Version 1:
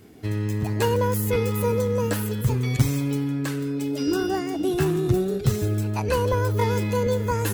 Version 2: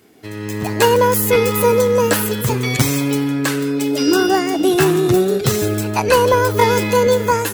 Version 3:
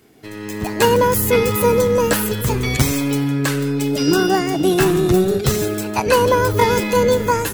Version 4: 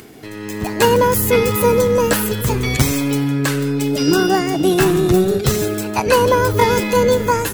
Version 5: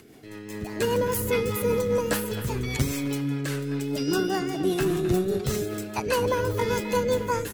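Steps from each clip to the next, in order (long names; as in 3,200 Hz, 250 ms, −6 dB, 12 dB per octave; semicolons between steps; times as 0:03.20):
high-pass filter 430 Hz 6 dB per octave; automatic gain control gain up to 11 dB; level +2.5 dB
sub-octave generator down 1 octave, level −5 dB; level −1.5 dB
upward compression, threshold −32 dBFS; level +1 dB
rotating-speaker cabinet horn 5 Hz; far-end echo of a speakerphone 260 ms, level −11 dB; level −8.5 dB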